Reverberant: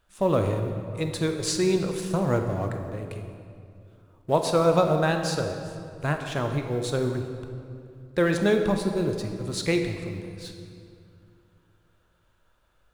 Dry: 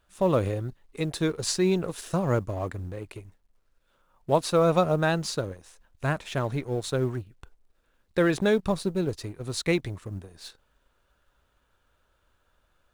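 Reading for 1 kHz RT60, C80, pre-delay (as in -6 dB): 2.3 s, 7.0 dB, 17 ms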